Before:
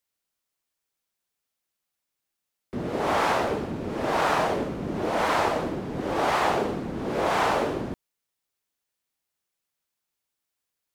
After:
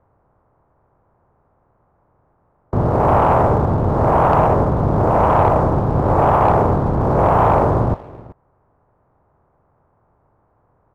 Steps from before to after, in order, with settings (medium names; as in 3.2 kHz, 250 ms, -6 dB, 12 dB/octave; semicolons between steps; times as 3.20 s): spectral levelling over time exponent 0.6; on a send: delay 381 ms -19.5 dB; on the sum: dynamic bell 370 Hz, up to -3 dB, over -37 dBFS, Q 0.97; in parallel at -11.5 dB: small samples zeroed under -24.5 dBFS; on the sum: low-pass 1.1 kHz 24 dB/octave; resonant low shelf 160 Hz +8.5 dB, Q 1.5; waveshaping leveller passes 1; trim +5 dB